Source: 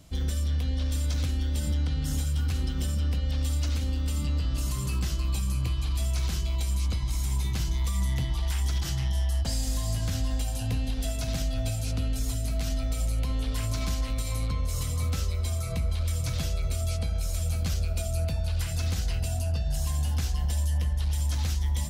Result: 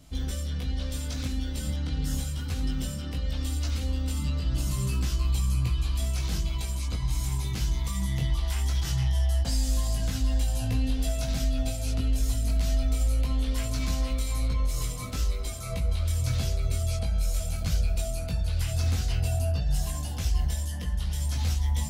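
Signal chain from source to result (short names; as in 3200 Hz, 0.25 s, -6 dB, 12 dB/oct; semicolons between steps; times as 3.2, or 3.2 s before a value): chorus voices 4, 0.19 Hz, delay 19 ms, depth 4.2 ms; gain +3 dB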